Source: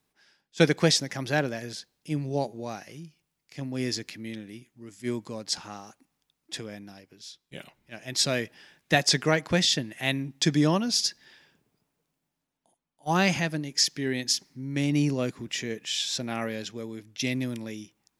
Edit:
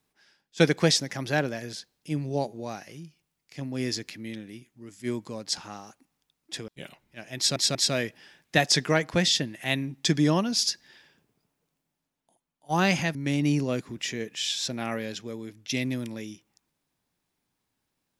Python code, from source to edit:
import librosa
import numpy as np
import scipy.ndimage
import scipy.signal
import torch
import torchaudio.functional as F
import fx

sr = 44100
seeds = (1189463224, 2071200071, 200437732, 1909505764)

y = fx.edit(x, sr, fx.cut(start_s=6.68, length_s=0.75),
    fx.stutter(start_s=8.12, slice_s=0.19, count=3),
    fx.cut(start_s=13.52, length_s=1.13), tone=tone)